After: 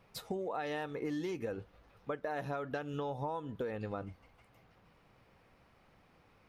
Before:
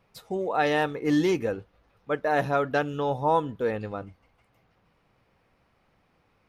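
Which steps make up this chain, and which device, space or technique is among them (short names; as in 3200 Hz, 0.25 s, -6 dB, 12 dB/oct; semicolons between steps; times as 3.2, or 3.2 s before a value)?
serial compression, peaks first (compressor, threshold -31 dBFS, peak gain reduction 12.5 dB; compressor 2.5:1, threshold -38 dBFS, peak gain reduction 6.5 dB); gain +1.5 dB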